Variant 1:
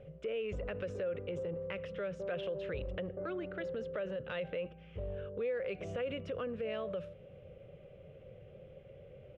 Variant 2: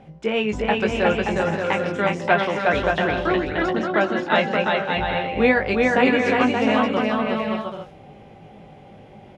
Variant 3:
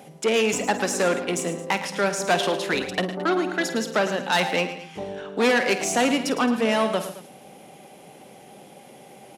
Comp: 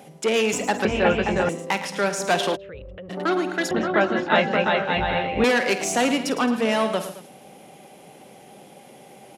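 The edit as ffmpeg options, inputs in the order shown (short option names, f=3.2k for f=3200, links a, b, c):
-filter_complex "[1:a]asplit=2[a][b];[2:a]asplit=4[c][d][e][f];[c]atrim=end=0.852[g];[a]atrim=start=0.848:end=1.492[h];[d]atrim=start=1.488:end=2.57[i];[0:a]atrim=start=2.55:end=3.11[j];[e]atrim=start=3.09:end=3.712[k];[b]atrim=start=3.708:end=5.442[l];[f]atrim=start=5.438[m];[g][h]acrossfade=d=0.004:c1=hsin:c2=hsin[n];[n][i]acrossfade=d=0.004:c1=hsin:c2=hsin[o];[o][j]acrossfade=d=0.02:c1=tri:c2=tri[p];[p][k]acrossfade=d=0.02:c1=tri:c2=tri[q];[q][l]acrossfade=d=0.004:c1=hsin:c2=hsin[r];[r][m]acrossfade=d=0.004:c1=hsin:c2=hsin"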